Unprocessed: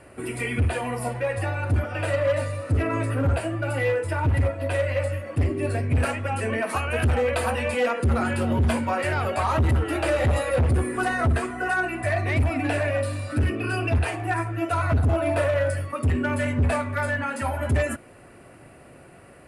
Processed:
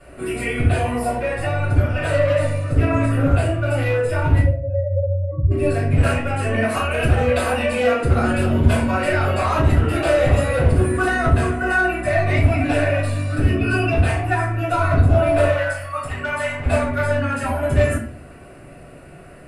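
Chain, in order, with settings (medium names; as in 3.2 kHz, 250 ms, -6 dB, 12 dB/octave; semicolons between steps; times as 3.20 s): 4.40–5.51 s: spectral contrast enhancement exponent 3.8; 15.47–16.65 s: resonant low shelf 540 Hz -13 dB, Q 1.5; simulated room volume 34 m³, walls mixed, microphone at 2.5 m; trim -8 dB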